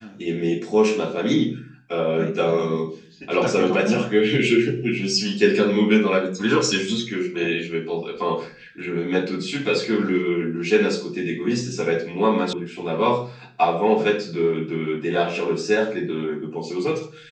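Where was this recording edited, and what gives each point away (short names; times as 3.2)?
12.53 sound cut off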